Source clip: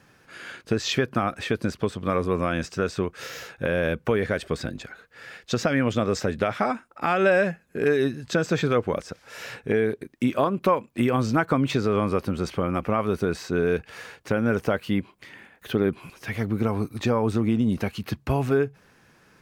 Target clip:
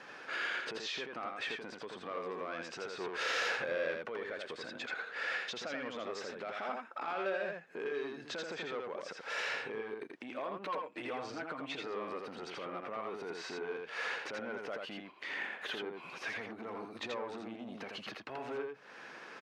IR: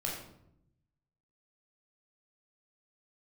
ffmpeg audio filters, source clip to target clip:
-filter_complex "[0:a]asettb=1/sr,asplit=3[a][b][c];[a]atrim=end=10.654[d];[b]atrim=start=10.65:end=11.82,asetpts=PTS-STARTPTS,afade=t=in:d=0.004:c=qsin,afade=t=out:st=1.166:d=0.004:c=qsin,aecho=1:1:6.5:0.87,atrim=end_sample=51597[e];[c]atrim=start=11.816[f];[d][e]acrossfade=d=0.004:c1=hsin:c2=qsin[g];[g][f]acrossfade=d=0.004:c1=qsin:c2=hsin,acompressor=threshold=-38dB:ratio=8,alimiter=level_in=9.5dB:limit=-24dB:level=0:latency=1:release=99,volume=-9.5dB,asettb=1/sr,asplit=3[h][i][j];[h]atrim=end=3.004[k];[i]atrim=start=3:end=4.01,asetpts=PTS-STARTPTS,afade=t=in:d=0.004:c=qsin,afade=t=out:st=1.006:d=0.004:c=qsin,acontrast=76[l];[j]atrim=start=4.006[m];[k][l]acrossfade=d=0.004:c1=hsin:c2=qsin[n];[n][m]acrossfade=d=0.004:c1=qsin:c2=hsin,asoftclip=type=tanh:threshold=-38.5dB,highpass=430,lowpass=4.1k,aecho=1:1:83:0.668,volume=8.5dB"

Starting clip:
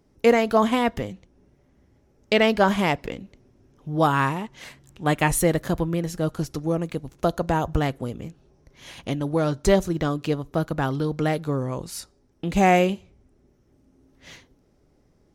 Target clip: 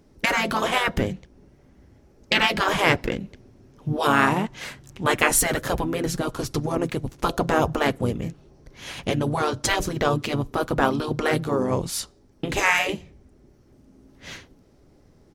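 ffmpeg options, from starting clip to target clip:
-filter_complex "[0:a]afftfilt=real='re*lt(hypot(re,im),0.398)':imag='im*lt(hypot(re,im),0.398)':win_size=1024:overlap=0.75,asplit=2[a][b];[b]asetrate=35002,aresample=44100,atempo=1.25992,volume=-6dB[c];[a][c]amix=inputs=2:normalize=0,volume=5.5dB"

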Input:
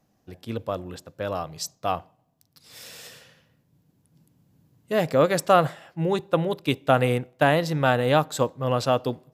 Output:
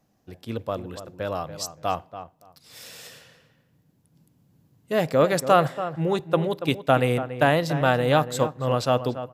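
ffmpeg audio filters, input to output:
-filter_complex "[0:a]asplit=2[a][b];[b]adelay=284,lowpass=f=1.8k:p=1,volume=-11dB,asplit=2[c][d];[d]adelay=284,lowpass=f=1.8k:p=1,volume=0.18[e];[a][c][e]amix=inputs=3:normalize=0"

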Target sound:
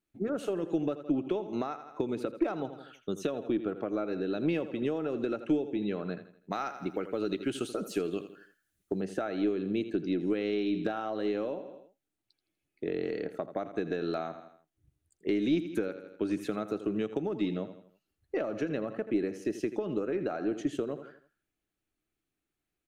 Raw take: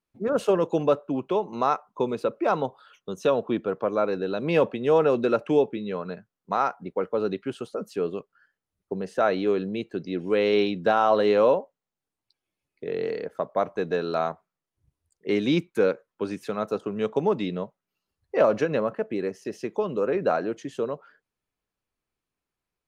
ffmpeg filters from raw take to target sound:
-filter_complex "[0:a]aecho=1:1:82|164|246|328:0.2|0.0818|0.0335|0.0138,acompressor=threshold=-28dB:ratio=16,asettb=1/sr,asplit=3[a][b][c];[a]atrim=end=6.524[d];[b]atrim=start=6.52:end=9.01,asetpts=PTS-STARTPTS,afade=t=in:d=0.004:c=qsin,afade=t=out:st=2.486:d=0.004:c=qsin,highshelf=f=2.4k:g=11.5[e];[c]atrim=start=9.006[f];[d][e]acrossfade=d=0.004:c1=hsin:c2=qsin[g];[g][f]acrossfade=d=0.004:c1=qsin:c2=hsin,deesser=0.9,equalizer=f=315:t=o:w=0.33:g=9,equalizer=f=500:t=o:w=0.33:g=-5,equalizer=f=1k:t=o:w=0.33:g=-11,equalizer=f=5k:t=o:w=0.33:g=-5,aeval=exprs='0.119*(cos(1*acos(clip(val(0)/0.119,-1,1)))-cos(1*PI/2))+0.00531*(cos(2*acos(clip(val(0)/0.119,-1,1)))-cos(2*PI/2))':c=same"

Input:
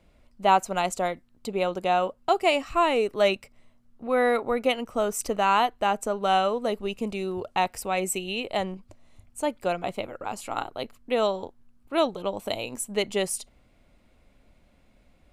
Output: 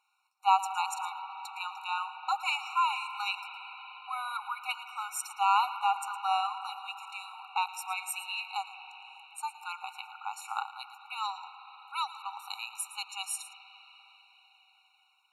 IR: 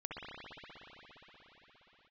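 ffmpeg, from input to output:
-filter_complex "[0:a]asplit=2[a][b];[b]asubboost=boost=11:cutoff=220[c];[1:a]atrim=start_sample=2205,adelay=112[d];[c][d]afir=irnorm=-1:irlink=0,volume=-9dB[e];[a][e]amix=inputs=2:normalize=0,afftfilt=real='re*eq(mod(floor(b*sr/1024/740),2),1)':imag='im*eq(mod(floor(b*sr/1024/740),2),1)':win_size=1024:overlap=0.75,volume=-2.5dB"

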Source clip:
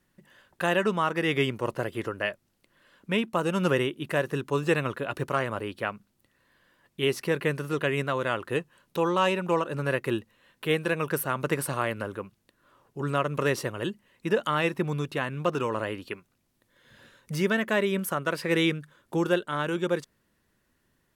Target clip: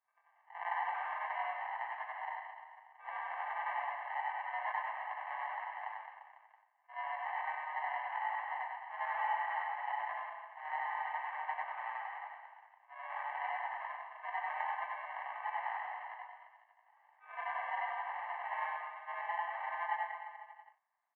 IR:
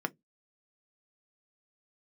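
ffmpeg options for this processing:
-filter_complex "[0:a]afftfilt=real='re':imag='-im':win_size=8192:overlap=0.75,flanger=delay=17:depth=2.7:speed=1,asplit=2[a][b];[b]aeval=exprs='(mod(16.8*val(0)+1,2)-1)/16.8':c=same,volume=-5dB[c];[a][c]amix=inputs=2:normalize=0,acrusher=samples=41:mix=1:aa=0.000001,asplit=2[d][e];[e]adelay=36,volume=-13dB[f];[d][f]amix=inputs=2:normalize=0,aecho=1:1:100|215|347.2|499.3|674.2:0.631|0.398|0.251|0.158|0.1,highpass=f=500:t=q:w=0.5412,highpass=f=500:t=q:w=1.307,lowpass=f=2k:t=q:w=0.5176,lowpass=f=2k:t=q:w=0.7071,lowpass=f=2k:t=q:w=1.932,afreqshift=310,volume=-5dB"

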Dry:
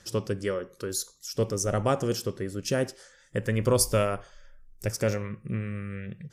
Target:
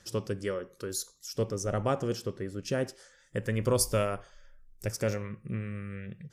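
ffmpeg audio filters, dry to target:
-filter_complex "[0:a]asettb=1/sr,asplit=3[a][b][c];[a]atrim=end=1.424[d];[b]atrim=start=1.42:end=2.87,asetpts=PTS-STARTPTS,afade=t=in:d=0.004:c=qsin,afade=t=out:st=1.446:d=0.004:c=qsin,highshelf=f=6.6k:g=-9[e];[c]atrim=start=2.866[f];[d][e]acrossfade=d=0.004:c1=hsin:c2=qsin[g];[g][f]acrossfade=d=0.004:c1=qsin:c2=hsin,volume=-3.5dB"

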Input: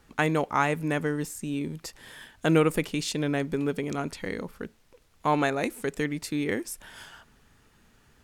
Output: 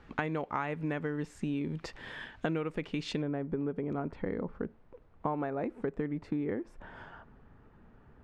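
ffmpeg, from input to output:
-af "asetnsamples=n=441:p=0,asendcmd='3.22 lowpass f 1100',lowpass=2.8k,acompressor=threshold=-34dB:ratio=8,volume=4dB"

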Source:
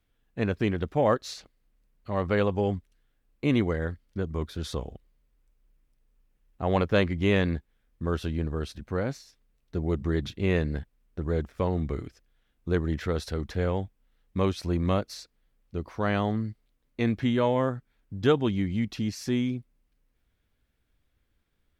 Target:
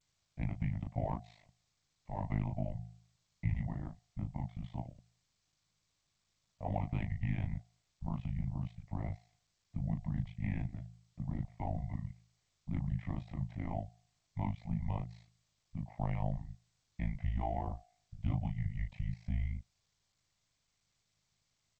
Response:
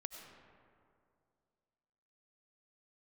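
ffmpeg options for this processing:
-filter_complex "[0:a]asoftclip=type=hard:threshold=-14.5dB,asplit=3[a][b][c];[a]afade=t=out:st=2.18:d=0.02[d];[b]lowpass=4.2k,afade=t=in:st=2.18:d=0.02,afade=t=out:st=4.72:d=0.02[e];[c]afade=t=in:st=4.72:d=0.02[f];[d][e][f]amix=inputs=3:normalize=0,asplit=2[g][h];[h]adelay=29,volume=-5dB[i];[g][i]amix=inputs=2:normalize=0,adynamicequalizer=threshold=0.00447:dfrequency=1100:dqfactor=3.2:tfrequency=1100:tqfactor=3.2:attack=5:release=100:ratio=0.375:range=2.5:mode=boostabove:tftype=bell,asplit=3[j][k][l];[j]bandpass=f=300:t=q:w=8,volume=0dB[m];[k]bandpass=f=870:t=q:w=8,volume=-6dB[n];[l]bandpass=f=2.24k:t=q:w=8,volume=-9dB[o];[m][n][o]amix=inputs=3:normalize=0,bandreject=f=299.5:t=h:w=4,bandreject=f=599:t=h:w=4,bandreject=f=898.5:t=h:w=4,acompressor=threshold=-36dB:ratio=4,afreqshift=-180,aemphasis=mode=reproduction:type=75fm,tremolo=f=53:d=0.919,volume=7.5dB" -ar 16000 -c:a g722

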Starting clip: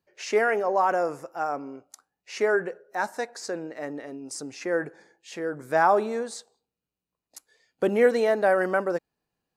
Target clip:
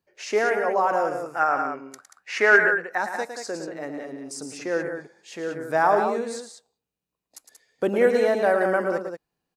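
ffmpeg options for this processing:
-filter_complex "[0:a]asettb=1/sr,asplit=3[a][b][c];[a]atrim=end=1.264[d];[b]atrim=start=1.26:end=2.98,asetpts=PTS-STARTPTS,afade=t=in:d=0.004:c=qsin,afade=t=out:st=1.716:d=0.004:c=qsin,equalizer=f=1.7k:t=o:w=1.4:g=14[e];[c]atrim=start=2.976[f];[d][e]acrossfade=d=0.004:c1=hsin:c2=qsin[g];[g][f]acrossfade=d=0.004:c1=qsin:c2=hsin,asplit=2[h][i];[i]aecho=0:1:109|183:0.376|0.422[j];[h][j]amix=inputs=2:normalize=0"

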